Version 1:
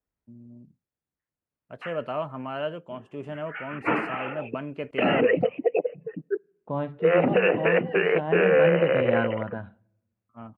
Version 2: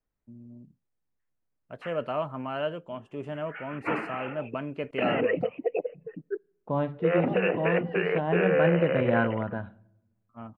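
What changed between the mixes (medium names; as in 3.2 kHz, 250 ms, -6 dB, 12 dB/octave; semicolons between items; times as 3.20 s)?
second voice: send +7.5 dB; background -5.0 dB; master: remove high-pass 44 Hz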